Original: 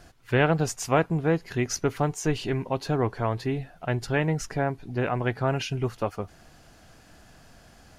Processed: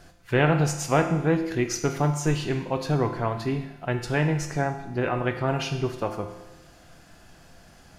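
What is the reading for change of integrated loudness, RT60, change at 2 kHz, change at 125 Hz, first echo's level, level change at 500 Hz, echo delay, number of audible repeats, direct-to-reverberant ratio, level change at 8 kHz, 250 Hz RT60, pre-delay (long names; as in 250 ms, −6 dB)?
+1.5 dB, 1.0 s, +1.0 dB, +2.0 dB, no echo audible, +0.5 dB, no echo audible, no echo audible, 5.0 dB, +1.0 dB, 1.0 s, 6 ms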